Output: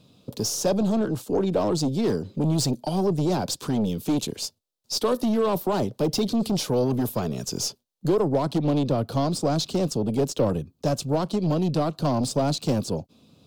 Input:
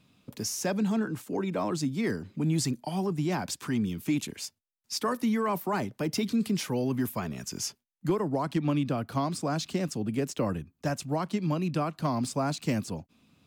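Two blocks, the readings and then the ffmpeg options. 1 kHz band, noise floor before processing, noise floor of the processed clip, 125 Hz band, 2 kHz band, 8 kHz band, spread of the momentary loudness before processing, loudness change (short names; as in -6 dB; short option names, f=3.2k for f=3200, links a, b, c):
+3.5 dB, -77 dBFS, -70 dBFS, +5.5 dB, -3.0 dB, +5.0 dB, 6 LU, +5.5 dB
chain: -af "aeval=exprs='0.126*(cos(1*acos(clip(val(0)/0.126,-1,1)))-cos(1*PI/2))+0.0178*(cos(5*acos(clip(val(0)/0.126,-1,1)))-cos(5*PI/2))+0.0112*(cos(6*acos(clip(val(0)/0.126,-1,1)))-cos(6*PI/2))':c=same,equalizer=f=125:t=o:w=1:g=4,equalizer=f=500:t=o:w=1:g=9,equalizer=f=2k:t=o:w=1:g=-11,equalizer=f=4k:t=o:w=1:g=7"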